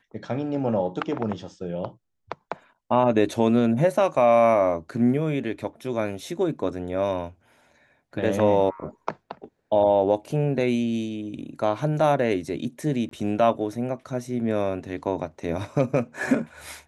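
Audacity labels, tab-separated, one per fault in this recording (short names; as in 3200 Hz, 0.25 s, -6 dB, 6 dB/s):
13.090000	13.110000	gap 23 ms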